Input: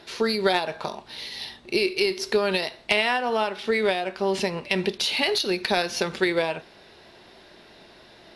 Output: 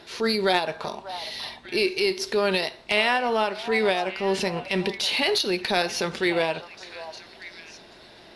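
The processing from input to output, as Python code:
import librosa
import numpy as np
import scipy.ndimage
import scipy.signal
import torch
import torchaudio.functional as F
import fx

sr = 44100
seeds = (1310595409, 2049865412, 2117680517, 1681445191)

y = fx.transient(x, sr, attack_db=-6, sustain_db=-1)
y = fx.echo_stepped(y, sr, ms=591, hz=870.0, octaves=1.4, feedback_pct=70, wet_db=-10.0)
y = y * librosa.db_to_amplitude(1.5)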